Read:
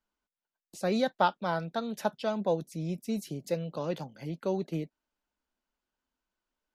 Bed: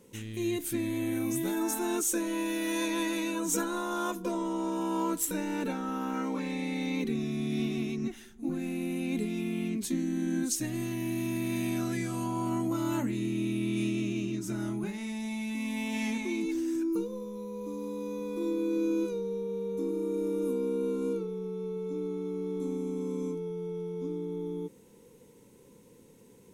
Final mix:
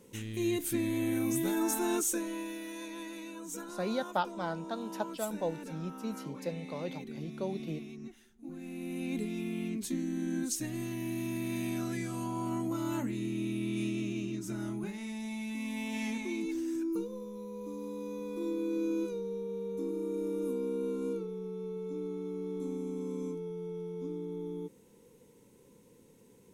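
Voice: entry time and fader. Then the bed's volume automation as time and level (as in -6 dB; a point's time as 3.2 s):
2.95 s, -5.5 dB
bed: 1.94 s 0 dB
2.75 s -12 dB
8.46 s -12 dB
9.03 s -3.5 dB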